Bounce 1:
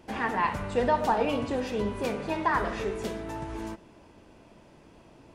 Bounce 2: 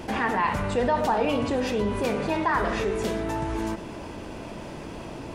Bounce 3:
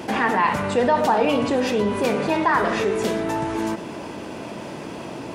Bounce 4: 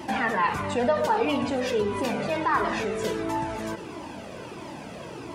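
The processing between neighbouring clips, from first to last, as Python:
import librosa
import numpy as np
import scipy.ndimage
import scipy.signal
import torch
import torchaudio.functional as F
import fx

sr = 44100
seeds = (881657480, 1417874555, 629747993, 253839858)

y1 = fx.env_flatten(x, sr, amount_pct=50)
y2 = scipy.signal.sosfilt(scipy.signal.butter(2, 140.0, 'highpass', fs=sr, output='sos'), y1)
y2 = y2 * librosa.db_to_amplitude(5.0)
y3 = fx.comb_cascade(y2, sr, direction='falling', hz=1.5)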